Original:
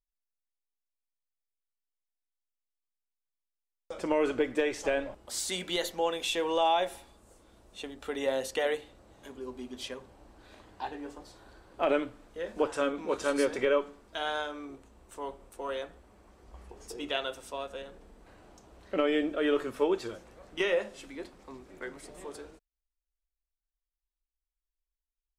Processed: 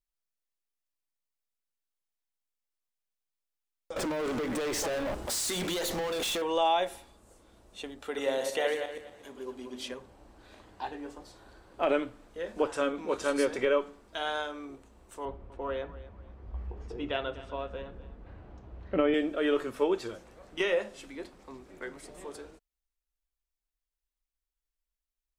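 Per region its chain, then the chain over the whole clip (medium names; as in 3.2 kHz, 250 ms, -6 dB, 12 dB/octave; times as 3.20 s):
3.96–6.42 s: peaking EQ 2.4 kHz -5 dB 0.82 oct + compression 10:1, threshold -37 dBFS + waveshaping leveller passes 5
8.02–9.92 s: backward echo that repeats 120 ms, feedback 44%, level -6 dB + bass shelf 120 Hz -9.5 dB
15.25–19.14 s: low-pass 2.7 kHz + peaking EQ 75 Hz +14.5 dB 2.3 oct + feedback delay 248 ms, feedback 29%, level -16.5 dB
whole clip: none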